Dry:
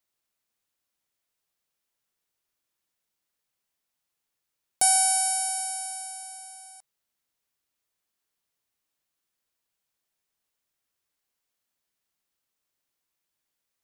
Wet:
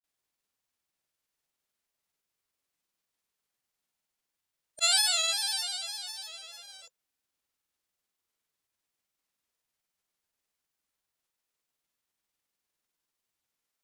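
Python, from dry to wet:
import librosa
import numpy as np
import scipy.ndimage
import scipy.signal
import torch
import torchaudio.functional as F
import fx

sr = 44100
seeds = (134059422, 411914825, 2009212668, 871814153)

y = fx.formant_shift(x, sr, semitones=-5)
y = fx.granulator(y, sr, seeds[0], grain_ms=100.0, per_s=20.0, spray_ms=100.0, spread_st=3)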